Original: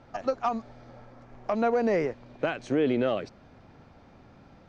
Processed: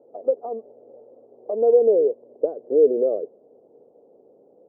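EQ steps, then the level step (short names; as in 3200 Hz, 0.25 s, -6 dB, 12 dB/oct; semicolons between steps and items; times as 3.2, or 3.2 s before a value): resonant high-pass 450 Hz, resonance Q 4.9; inverse Chebyshev low-pass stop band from 2700 Hz, stop band 70 dB; air absorption 350 m; 0.0 dB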